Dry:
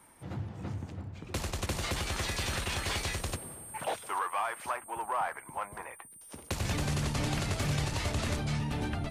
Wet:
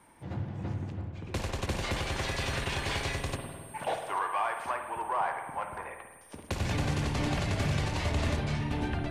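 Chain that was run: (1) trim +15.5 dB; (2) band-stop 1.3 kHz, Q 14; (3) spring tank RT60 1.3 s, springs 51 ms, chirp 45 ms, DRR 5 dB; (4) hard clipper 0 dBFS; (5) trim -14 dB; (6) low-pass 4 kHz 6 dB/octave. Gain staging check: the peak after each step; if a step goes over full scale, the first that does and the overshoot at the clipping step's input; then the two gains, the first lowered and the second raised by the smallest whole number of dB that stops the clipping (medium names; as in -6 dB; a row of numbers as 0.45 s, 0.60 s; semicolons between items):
-7.0 dBFS, -6.0 dBFS, -4.5 dBFS, -4.5 dBFS, -18.5 dBFS, -18.5 dBFS; nothing clips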